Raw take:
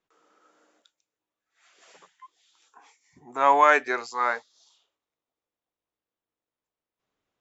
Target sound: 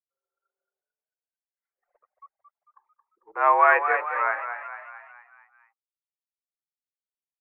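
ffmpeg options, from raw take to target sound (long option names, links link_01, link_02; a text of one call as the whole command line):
ffmpeg -i in.wav -filter_complex "[0:a]highpass=frequency=300:width_type=q:width=0.5412,highpass=frequency=300:width_type=q:width=1.307,lowpass=frequency=2300:width_type=q:width=0.5176,lowpass=frequency=2300:width_type=q:width=0.7071,lowpass=frequency=2300:width_type=q:width=1.932,afreqshift=80,anlmdn=0.0398,asplit=7[link_01][link_02][link_03][link_04][link_05][link_06][link_07];[link_02]adelay=223,afreqshift=42,volume=-8.5dB[link_08];[link_03]adelay=446,afreqshift=84,volume=-14dB[link_09];[link_04]adelay=669,afreqshift=126,volume=-19.5dB[link_10];[link_05]adelay=892,afreqshift=168,volume=-25dB[link_11];[link_06]adelay=1115,afreqshift=210,volume=-30.6dB[link_12];[link_07]adelay=1338,afreqshift=252,volume=-36.1dB[link_13];[link_01][link_08][link_09][link_10][link_11][link_12][link_13]amix=inputs=7:normalize=0" out.wav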